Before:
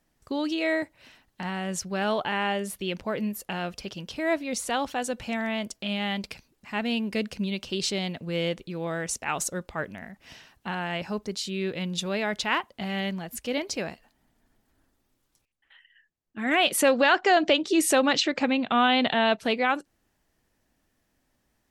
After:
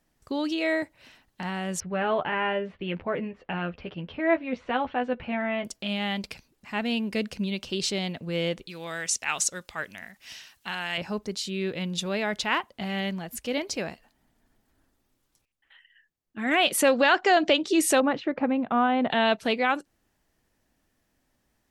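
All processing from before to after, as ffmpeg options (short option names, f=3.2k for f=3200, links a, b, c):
-filter_complex "[0:a]asettb=1/sr,asplit=3[a][b][c];[a]atrim=end=1.804[d];[b]atrim=start=1.8:end=5.65,asetpts=PTS-STARTPTS,afade=t=in:d=0.004:c=qsin,afade=t=out:st=3.846:d=0.004:c=qsin,lowpass=f=2.7k:w=0.5412,lowpass=f=2.7k:w=1.3066,asplit=2[e][f];[f]adelay=12,volume=-5.5dB[g];[e][g]amix=inputs=2:normalize=0,atrim=end_sample=169785[h];[c]atrim=start=5.646[i];[d][h]acrossfade=d=0.004:c1=hsin:c2=qsin[j];[j][i]acrossfade=d=0.004:c1=qsin:c2=hsin,asettb=1/sr,asplit=3[k][l][m];[k]atrim=end=8.674[n];[l]atrim=start=8.67:end=10.98,asetpts=PTS-STARTPTS,afade=t=in:d=0.004:c=qsin,afade=t=out:st=2.306:d=0.004:c=qsin,acrossover=split=8200[o][p];[p]acompressor=threshold=-53dB:ratio=4:attack=1:release=60[q];[o][q]amix=inputs=2:normalize=0,tiltshelf=f=1.4k:g=-9[r];[m]atrim=start=10.976[s];[n][r]acrossfade=d=0.004:c1=hsin:c2=qsin[t];[t][s]acrossfade=d=0.004:c1=qsin:c2=hsin,asettb=1/sr,asplit=3[u][v][w];[u]atrim=end=18.004[x];[v]atrim=start=18:end=19.11,asetpts=PTS-STARTPTS,afade=t=in:d=0.004:c=qsin,afade=t=out:st=1.106:d=0.004:c=qsin,lowpass=1.3k,agate=range=-33dB:threshold=-42dB:ratio=3:release=100:detection=peak[y];[w]atrim=start=19.106[z];[x][y]acrossfade=d=0.004:c1=hsin:c2=qsin[aa];[aa][z]acrossfade=d=0.004:c1=qsin:c2=hsin"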